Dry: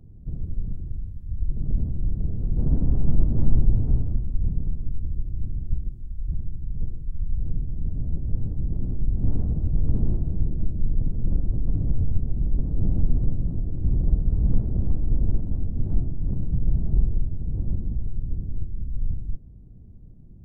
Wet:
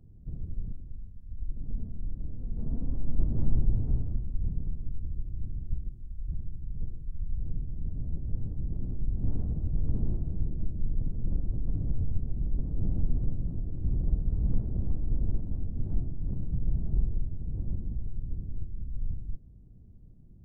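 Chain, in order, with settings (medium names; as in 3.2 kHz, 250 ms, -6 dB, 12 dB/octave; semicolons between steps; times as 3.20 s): 0.72–3.19 s: flange 1.3 Hz, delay 3.4 ms, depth 1.3 ms, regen +50%; trim -6.5 dB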